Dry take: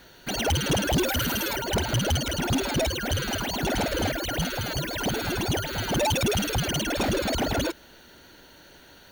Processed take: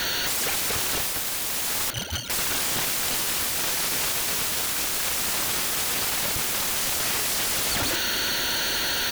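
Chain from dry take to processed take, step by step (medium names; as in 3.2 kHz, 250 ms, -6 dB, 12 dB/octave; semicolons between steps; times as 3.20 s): peak limiter -30 dBFS, peak gain reduction 11 dB; 2.88–3.95 s: bass shelf 120 Hz +12 dB; delay 239 ms -4 dB; 1.90–2.30 s: gate -30 dBFS, range -25 dB; tilt shelf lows -6.5 dB, about 1.1 kHz; sine folder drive 19 dB, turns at -23 dBFS; trim +1.5 dB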